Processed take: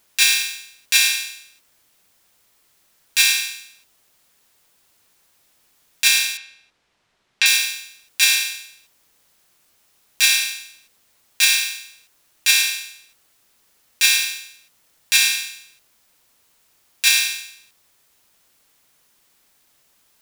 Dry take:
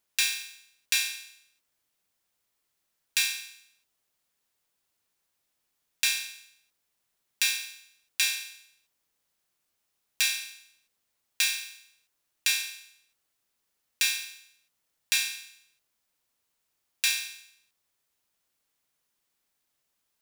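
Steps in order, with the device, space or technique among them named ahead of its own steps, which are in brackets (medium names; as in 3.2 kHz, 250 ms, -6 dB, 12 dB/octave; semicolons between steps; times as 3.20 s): 6.37–7.46 s: Bessel low-pass 3.2 kHz, order 2; loud club master (compression 1.5:1, threshold -30 dBFS, peak gain reduction 3.5 dB; hard clipper -7 dBFS, distortion -32 dB; loudness maximiser +18.5 dB); trim -1 dB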